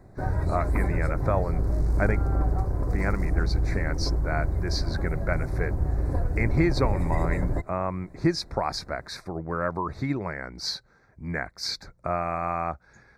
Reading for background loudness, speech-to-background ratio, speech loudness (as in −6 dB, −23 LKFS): −28.5 LKFS, −2.0 dB, −30.5 LKFS